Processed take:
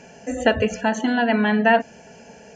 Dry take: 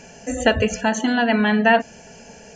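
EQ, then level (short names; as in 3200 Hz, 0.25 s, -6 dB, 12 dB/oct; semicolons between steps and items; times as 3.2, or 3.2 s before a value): HPF 120 Hz 6 dB/oct; high shelf 3700 Hz -9 dB; notch 1200 Hz, Q 12; 0.0 dB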